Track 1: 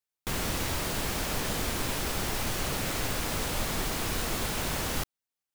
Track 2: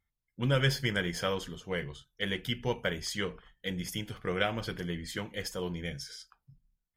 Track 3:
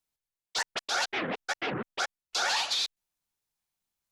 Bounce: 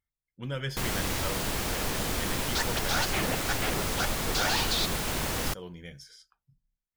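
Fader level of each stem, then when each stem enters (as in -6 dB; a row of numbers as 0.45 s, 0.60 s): +0.5 dB, -7.0 dB, -1.0 dB; 0.50 s, 0.00 s, 2.00 s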